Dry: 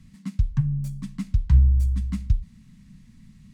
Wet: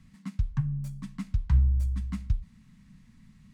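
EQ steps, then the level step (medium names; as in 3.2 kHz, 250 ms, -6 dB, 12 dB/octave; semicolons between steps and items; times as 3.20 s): peaking EQ 1.1 kHz +7 dB 2.3 oct; -6.0 dB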